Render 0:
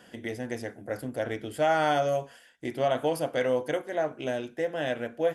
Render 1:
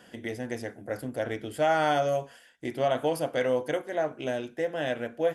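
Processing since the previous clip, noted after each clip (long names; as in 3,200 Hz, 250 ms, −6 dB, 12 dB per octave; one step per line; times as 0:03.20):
no processing that can be heard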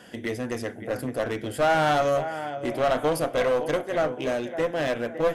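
delay with a low-pass on its return 560 ms, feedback 36%, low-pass 2,900 Hz, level −13 dB
asymmetric clip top −29 dBFS
level +5.5 dB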